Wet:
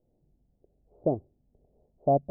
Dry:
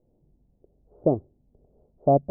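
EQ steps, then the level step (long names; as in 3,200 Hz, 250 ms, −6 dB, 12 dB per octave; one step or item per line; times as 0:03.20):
low-pass filter 1,200 Hz 6 dB per octave
high-frequency loss of the air 450 metres
parametric band 730 Hz +5 dB 0.81 octaves
−5.0 dB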